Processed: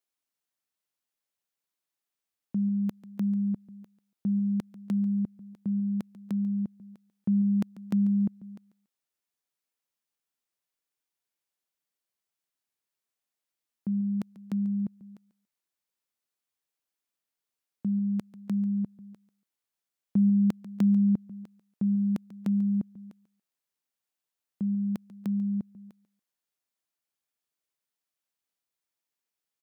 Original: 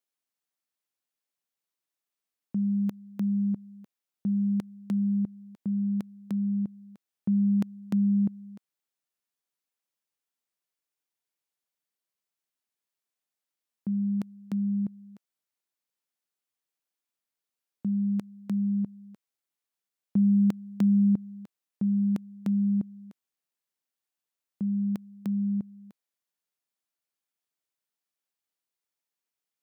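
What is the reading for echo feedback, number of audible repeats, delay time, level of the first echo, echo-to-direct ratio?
20%, 2, 142 ms, -17.0 dB, -17.0 dB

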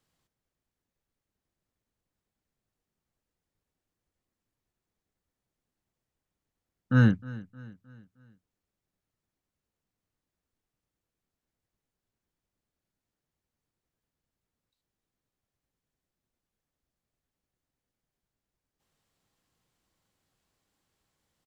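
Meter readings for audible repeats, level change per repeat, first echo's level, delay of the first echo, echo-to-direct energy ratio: 3, -6.5 dB, -19.0 dB, 310 ms, -18.0 dB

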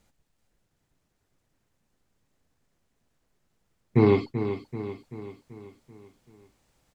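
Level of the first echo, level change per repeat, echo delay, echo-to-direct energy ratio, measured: -10.0 dB, -5.5 dB, 385 ms, -8.5 dB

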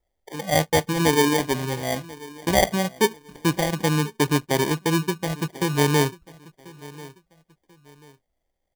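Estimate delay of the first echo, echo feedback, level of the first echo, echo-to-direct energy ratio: 1039 ms, 31%, -20.5 dB, -20.0 dB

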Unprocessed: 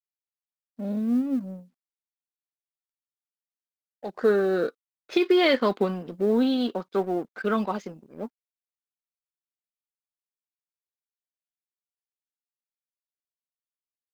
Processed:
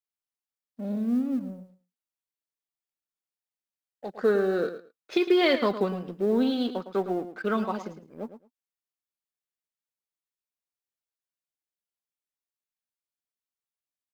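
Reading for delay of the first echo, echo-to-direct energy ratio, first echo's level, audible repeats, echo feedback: 109 ms, -11.5 dB, -11.5 dB, 2, 17%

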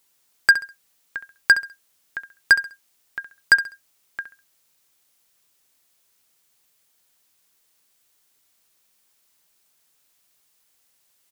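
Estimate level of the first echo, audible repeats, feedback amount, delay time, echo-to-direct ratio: -13.5 dB, 3, 29%, 67 ms, -13.0 dB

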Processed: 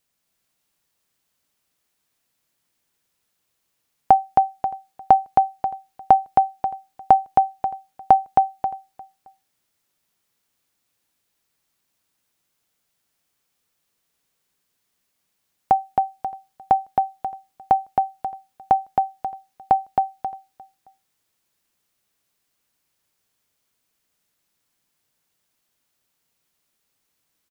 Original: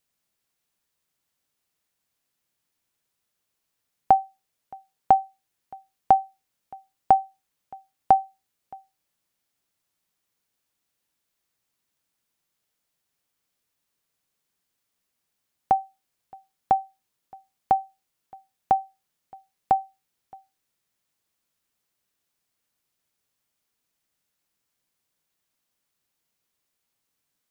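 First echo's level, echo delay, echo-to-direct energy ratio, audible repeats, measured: -3.0 dB, 268 ms, -2.5 dB, 2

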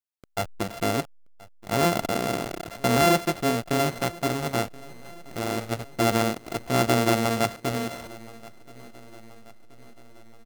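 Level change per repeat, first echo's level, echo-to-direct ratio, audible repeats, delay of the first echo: -5.5 dB, -21.5 dB, -20.0 dB, 3, 1027 ms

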